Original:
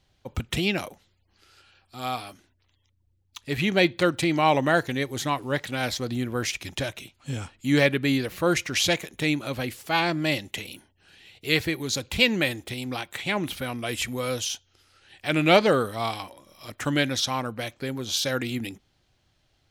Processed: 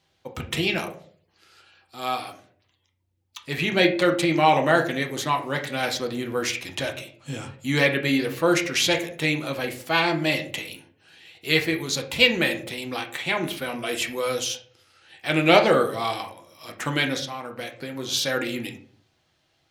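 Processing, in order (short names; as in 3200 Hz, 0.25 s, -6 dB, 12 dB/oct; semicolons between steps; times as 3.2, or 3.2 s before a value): HPF 250 Hz 6 dB/oct; 17.15–17.97 compressor 6:1, threshold -32 dBFS, peak gain reduction 10.5 dB; reverb RT60 0.50 s, pre-delay 6 ms, DRR 2.5 dB; gain +1 dB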